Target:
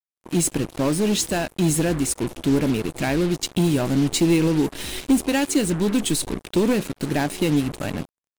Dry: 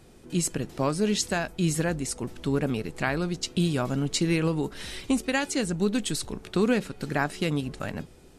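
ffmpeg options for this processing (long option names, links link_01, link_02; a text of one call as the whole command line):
ffmpeg -i in.wav -af "aeval=exprs='0.282*(cos(1*acos(clip(val(0)/0.282,-1,1)))-cos(1*PI/2))+0.0631*(cos(5*acos(clip(val(0)/0.282,-1,1)))-cos(5*PI/2))':channel_layout=same,superequalizer=6b=1.78:10b=0.501:11b=0.631:14b=0.708:16b=1.58,acrusher=bits=4:mix=0:aa=0.5" out.wav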